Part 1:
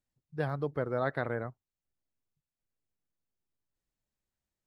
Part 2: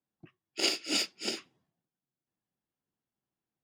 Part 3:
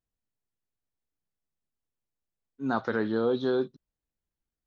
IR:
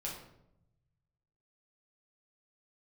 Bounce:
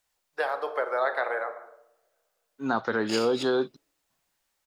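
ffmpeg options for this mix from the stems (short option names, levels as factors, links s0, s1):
-filter_complex "[0:a]highpass=f=500:w=0.5412,highpass=f=500:w=1.3066,volume=0.944,asplit=2[s0][s1];[s1]volume=0.668[s2];[1:a]adelay=2500,volume=0.473,asplit=3[s3][s4][s5];[s3]atrim=end=3.43,asetpts=PTS-STARTPTS,afade=t=out:st=3.426:d=0.004:c=hsin[s6];[s4]atrim=start=3.43:end=4.1,asetpts=PTS-STARTPTS,volume=0[s7];[s5]atrim=start=4.1,asetpts=PTS-STARTPTS,afade=t=in:d=0.004:c=hsin[s8];[s6][s7][s8]concat=n=3:v=0:a=1,asplit=2[s9][s10];[s10]volume=0.2[s11];[2:a]volume=0.75,asplit=2[s12][s13];[s13]apad=whole_len=270612[s14];[s9][s14]sidechaincompress=threshold=0.0224:ratio=8:attack=16:release=863[s15];[3:a]atrim=start_sample=2205[s16];[s2][s11]amix=inputs=2:normalize=0[s17];[s17][s16]afir=irnorm=-1:irlink=0[s18];[s0][s15][s12][s18]amix=inputs=4:normalize=0,firequalizer=gain_entry='entry(140,0);entry(440,6);entry(830,12)':delay=0.05:min_phase=1,acrossover=split=460[s19][s20];[s20]acompressor=threshold=0.0282:ratio=2[s21];[s19][s21]amix=inputs=2:normalize=0"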